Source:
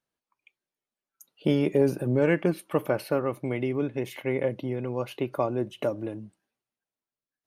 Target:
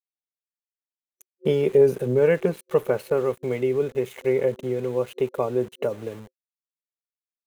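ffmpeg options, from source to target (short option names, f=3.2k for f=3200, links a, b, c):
-af "aeval=exprs='val(0)*gte(abs(val(0)),0.00841)':c=same,superequalizer=6b=0.447:7b=2.51:14b=0.631"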